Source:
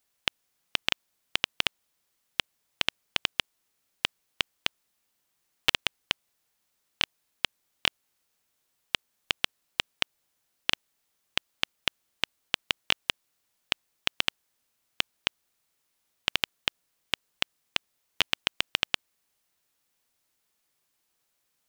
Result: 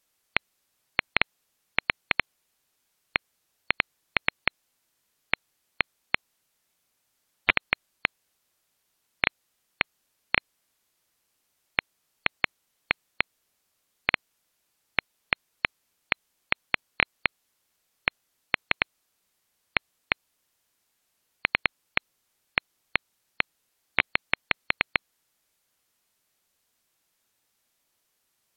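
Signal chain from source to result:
change of speed 0.759×
gate on every frequency bin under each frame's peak −20 dB strong
level +1.5 dB

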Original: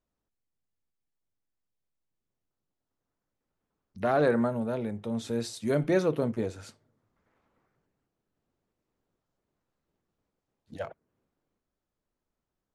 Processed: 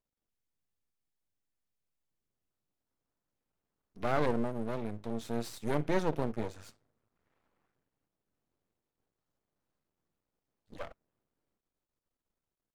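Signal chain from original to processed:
0:04.26–0:04.66: flat-topped bell 1,800 Hz −10.5 dB 2.9 octaves
half-wave rectification
level −1.5 dB

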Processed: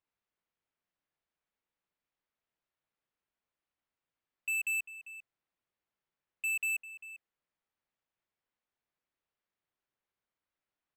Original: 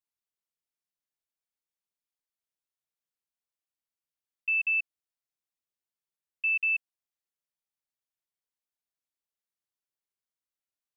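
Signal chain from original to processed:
low-pass filter 2,500 Hz
soft clipping −38.5 dBFS, distortion −10 dB
slap from a distant wall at 68 metres, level −12 dB
level +7.5 dB

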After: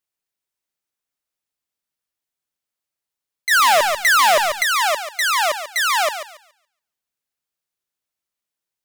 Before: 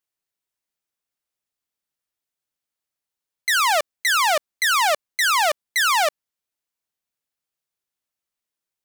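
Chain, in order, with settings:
feedback echo with a high-pass in the loop 141 ms, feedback 26%, high-pass 530 Hz, level −9 dB
0:03.51–0:04.63: leveller curve on the samples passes 3

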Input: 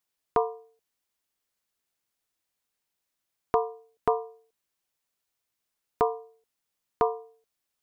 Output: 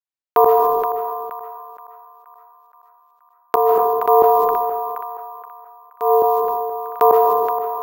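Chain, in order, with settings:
noise gate −57 dBFS, range −36 dB
high-pass filter 540 Hz 12 dB per octave
spectral tilt −1.5 dB per octave
reversed playback
downward compressor 8 to 1, threshold −39 dBFS, peak gain reduction 19 dB
reversed playback
shaped tremolo saw up 4.5 Hz, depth 90%
on a send: feedback echo with a band-pass in the loop 474 ms, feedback 64%, band-pass 1,400 Hz, level −16.5 dB
on the sum: comb and all-pass reverb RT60 0.85 s, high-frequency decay 0.4×, pre-delay 110 ms, DRR 9 dB
bad sample-rate conversion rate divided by 3×, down none, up hold
boost into a limiter +34 dB
level that may fall only so fast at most 21 dB per second
level −2.5 dB

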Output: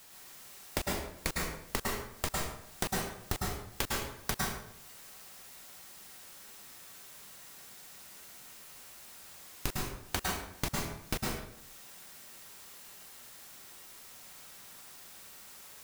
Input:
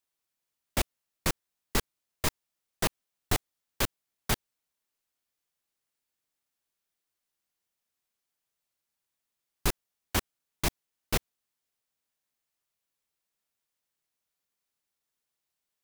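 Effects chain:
background noise white −70 dBFS
downward compressor 16 to 1, threshold −47 dBFS, peak gain reduction 26 dB
dense smooth reverb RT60 0.76 s, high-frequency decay 0.7×, pre-delay 95 ms, DRR −3 dB
level +14.5 dB

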